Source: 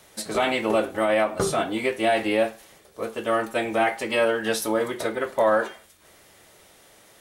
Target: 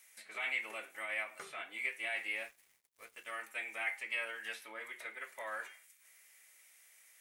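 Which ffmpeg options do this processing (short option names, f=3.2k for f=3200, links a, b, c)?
-filter_complex "[0:a]acrossover=split=5300[a][b];[a]bandpass=f=2.2k:t=q:w=4:csg=0[c];[b]acompressor=threshold=-54dB:ratio=6[d];[c][d]amix=inputs=2:normalize=0,asettb=1/sr,asplit=3[e][f][g];[e]atrim=end=2.364[h];[f]atrim=start=2.36:end=3.31,asetpts=PTS-STARTPTS,afade=t=in:d=0.004:c=qsin,afade=t=out:st=0.946:d=0.004:c=qsin,aeval=exprs='sgn(val(0))*max(abs(val(0))-0.0015,0)':c=same[i];[g]atrim=start=3.306[j];[h][i]acrossfade=d=0.004:c1=hsin:c2=qsin[k];[k][j]acrossfade=d=0.004:c1=qsin:c2=hsin,volume=-4.5dB"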